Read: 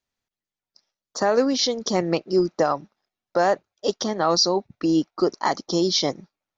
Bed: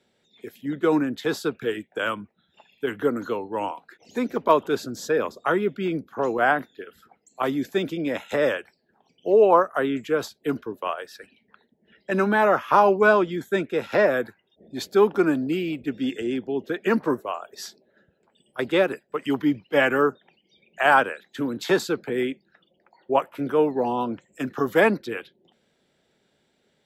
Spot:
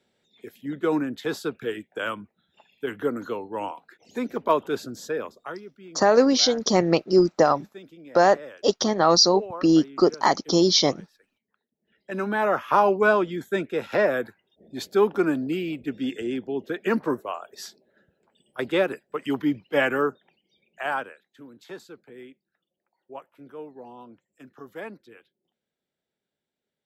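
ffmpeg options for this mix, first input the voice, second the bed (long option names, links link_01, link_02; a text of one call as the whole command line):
ffmpeg -i stem1.wav -i stem2.wav -filter_complex "[0:a]adelay=4800,volume=2.5dB[link_01];[1:a]volume=14dB,afade=type=out:start_time=4.88:duration=0.76:silence=0.158489,afade=type=in:start_time=11.69:duration=0.98:silence=0.141254,afade=type=out:start_time=19.78:duration=1.57:silence=0.141254[link_02];[link_01][link_02]amix=inputs=2:normalize=0" out.wav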